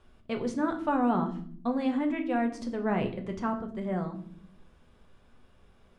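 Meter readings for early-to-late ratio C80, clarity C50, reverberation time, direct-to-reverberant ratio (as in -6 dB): 16.0 dB, 11.5 dB, no single decay rate, 4.0 dB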